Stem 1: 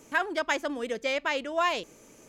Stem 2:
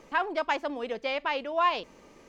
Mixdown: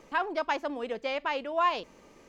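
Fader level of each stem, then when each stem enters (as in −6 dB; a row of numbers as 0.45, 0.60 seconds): −19.5, −1.5 decibels; 0.00, 0.00 seconds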